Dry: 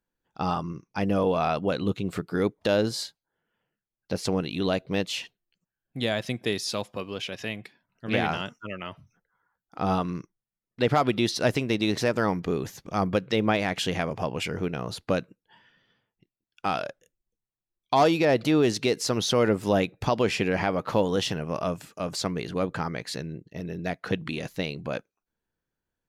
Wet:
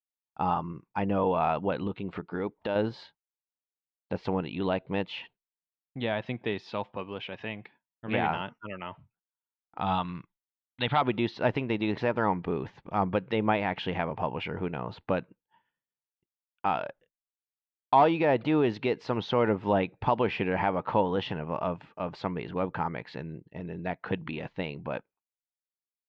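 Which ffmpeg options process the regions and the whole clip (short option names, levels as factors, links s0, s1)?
-filter_complex "[0:a]asettb=1/sr,asplit=3[s0][s1][s2];[s0]atrim=end=1.874[s3];[s1]atrim=start=1.87:end=2.76,asetpts=PTS-STARTPTS,afade=t=in:d=0.004:c=qsin,afade=t=out:st=0.886:d=0.004:c=qsin,equalizer=f=120:t=o:w=0.68:g=-6,acompressor=threshold=0.0501:ratio=2:attack=3.2:release=140:knee=1:detection=peak[s4];[s2]atrim=start=2.756[s5];[s3][s4]acrossfade=d=0.004:c1=hsin:c2=qsin[s6];[s6][s5]acrossfade=d=0.004:c1=qsin:c2=hsin,asettb=1/sr,asplit=3[s7][s8][s9];[s7]atrim=end=9.814[s10];[s8]atrim=start=9.81:end=11.02,asetpts=PTS-STARTPTS,afade=t=in:d=0.004:c=qsin,afade=t=out:st=1.206:d=0.004:c=qsin,lowpass=f=3700:t=q:w=5.5,equalizer=f=400:t=o:w=1.1:g=-10.5[s11];[s9]atrim=start=11.016[s12];[s10][s11]acrossfade=d=0.004:c1=hsin:c2=qsin[s13];[s13][s12]acrossfade=d=0.004:c1=qsin:c2=hsin,lowpass=f=3100:w=0.5412,lowpass=f=3100:w=1.3066,agate=range=0.0224:threshold=0.00355:ratio=3:detection=peak,equalizer=f=900:t=o:w=0.37:g=9.5,volume=0.668"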